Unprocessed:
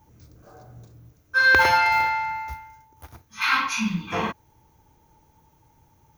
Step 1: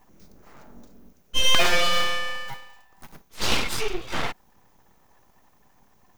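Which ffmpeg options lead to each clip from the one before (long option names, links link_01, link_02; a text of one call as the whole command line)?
ffmpeg -i in.wav -af "aeval=exprs='abs(val(0))':channel_layout=same,volume=1.5dB" out.wav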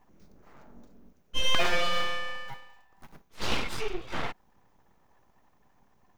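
ffmpeg -i in.wav -af "highshelf=frequency=4500:gain=-9.5,volume=-4.5dB" out.wav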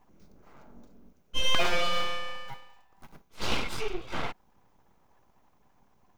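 ffmpeg -i in.wav -af "bandreject=frequency=1800:width=13" out.wav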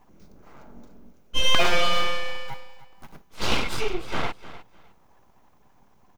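ffmpeg -i in.wav -af "aecho=1:1:304|608:0.168|0.0336,volume=5.5dB" out.wav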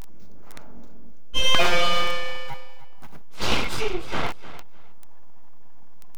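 ffmpeg -i in.wav -af "aeval=exprs='val(0)+0.5*0.0708*sgn(val(0))':channel_layout=same,volume=1dB" out.wav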